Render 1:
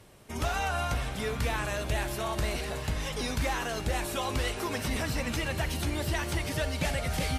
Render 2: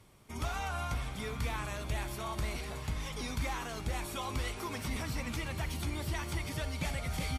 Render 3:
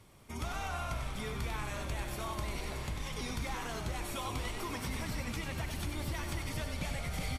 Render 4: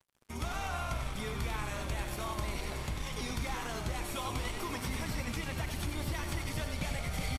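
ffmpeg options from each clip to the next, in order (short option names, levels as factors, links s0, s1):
-af "aecho=1:1:0.9:0.33,volume=0.473"
-filter_complex "[0:a]acompressor=threshold=0.0126:ratio=2,asplit=2[s0][s1];[s1]asplit=8[s2][s3][s4][s5][s6][s7][s8][s9];[s2]adelay=96,afreqshift=-41,volume=0.473[s10];[s3]adelay=192,afreqshift=-82,volume=0.285[s11];[s4]adelay=288,afreqshift=-123,volume=0.17[s12];[s5]adelay=384,afreqshift=-164,volume=0.102[s13];[s6]adelay=480,afreqshift=-205,volume=0.0617[s14];[s7]adelay=576,afreqshift=-246,volume=0.0367[s15];[s8]adelay=672,afreqshift=-287,volume=0.0221[s16];[s9]adelay=768,afreqshift=-328,volume=0.0132[s17];[s10][s11][s12][s13][s14][s15][s16][s17]amix=inputs=8:normalize=0[s18];[s0][s18]amix=inputs=2:normalize=0,volume=1.12"
-af "aeval=exprs='sgn(val(0))*max(abs(val(0))-0.00211,0)':c=same,aresample=32000,aresample=44100,volume=1.33"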